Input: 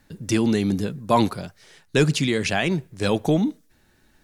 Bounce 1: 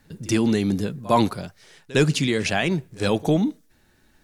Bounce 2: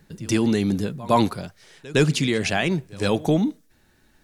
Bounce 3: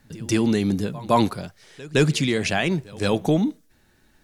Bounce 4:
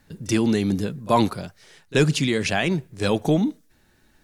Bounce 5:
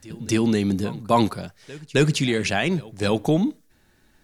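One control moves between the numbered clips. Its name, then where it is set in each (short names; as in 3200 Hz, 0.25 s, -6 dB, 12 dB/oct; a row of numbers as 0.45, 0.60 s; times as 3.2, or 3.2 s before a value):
pre-echo, time: 57, 111, 165, 32, 265 ms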